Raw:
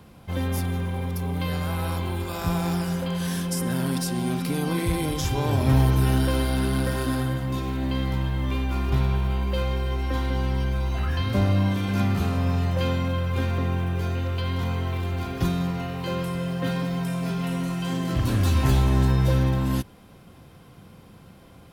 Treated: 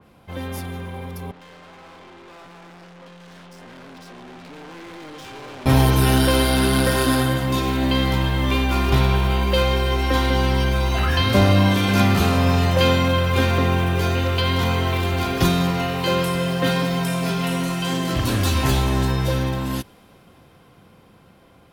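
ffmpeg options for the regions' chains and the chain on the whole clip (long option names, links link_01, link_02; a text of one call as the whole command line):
ffmpeg -i in.wav -filter_complex "[0:a]asettb=1/sr,asplit=3[link_01][link_02][link_03];[link_01]atrim=end=1.314[link_04];[link_02]atrim=start=1.31:end=5.66,asetpts=PTS-STARTPTS,afade=type=in:duration=0.004:curve=qsin,afade=type=out:start_time=4.346:duration=0.004:curve=qsin,highpass=200,lowpass=4200,aeval=exprs='(tanh(126*val(0)+0.2)-tanh(0.2))/126':channel_layout=same[link_05];[link_03]atrim=start=5.656[link_06];[link_04][link_05]acrossfade=duration=0.004:curve1=hsin:curve2=qsin[link_07];[link_07][link_06]acrossfade=duration=0.004:curve1=qsin:curve2=hsin,bass=frequency=250:gain=-6,treble=frequency=4000:gain=-5,dynaudnorm=framelen=770:gausssize=13:maxgain=11.5dB,adynamicequalizer=threshold=0.01:dfrequency=2900:dqfactor=0.7:tfrequency=2900:tqfactor=0.7:attack=5:release=100:ratio=0.375:range=3.5:mode=boostabove:tftype=highshelf" out.wav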